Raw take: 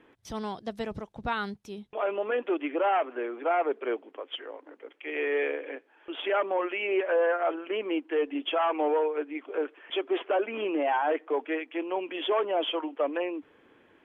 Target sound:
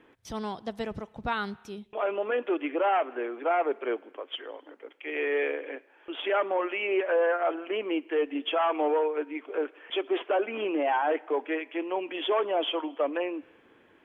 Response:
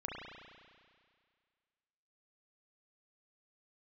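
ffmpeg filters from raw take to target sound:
-filter_complex "[0:a]asplit=2[a][b];[1:a]atrim=start_sample=2205,afade=t=out:st=0.42:d=0.01,atrim=end_sample=18963,lowshelf=f=470:g=-11.5[c];[b][c]afir=irnorm=-1:irlink=0,volume=-19dB[d];[a][d]amix=inputs=2:normalize=0"

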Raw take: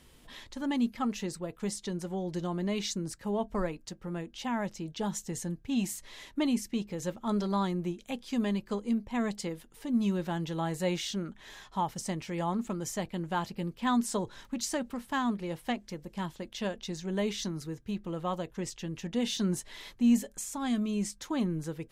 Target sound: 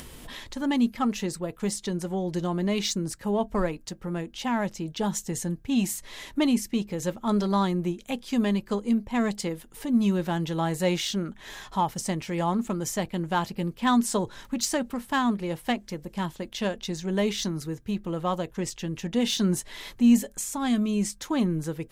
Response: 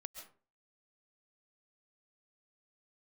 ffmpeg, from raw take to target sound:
-filter_complex "[0:a]asplit=2[a][b];[b]adynamicsmooth=sensitivity=5.5:basefreq=3.3k,volume=-1dB[c];[a][c]amix=inputs=2:normalize=0,highshelf=f=4.5k:g=9,acompressor=mode=upward:threshold=-35dB:ratio=2.5"

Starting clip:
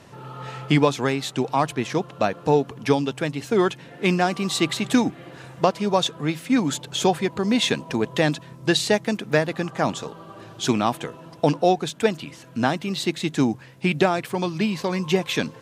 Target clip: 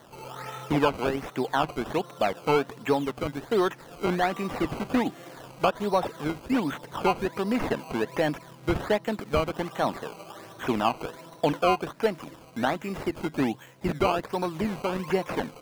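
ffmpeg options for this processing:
-filter_complex "[0:a]asplit=2[a][b];[b]highpass=f=720:p=1,volume=14dB,asoftclip=type=tanh:threshold=-3.5dB[c];[a][c]amix=inputs=2:normalize=0,lowpass=f=1.4k:p=1,volume=-6dB,acrusher=samples=17:mix=1:aa=0.000001:lfo=1:lforange=17:lforate=1.3,acrossover=split=3400[d][e];[e]acompressor=threshold=-39dB:ratio=4:attack=1:release=60[f];[d][f]amix=inputs=2:normalize=0,volume=-6dB"

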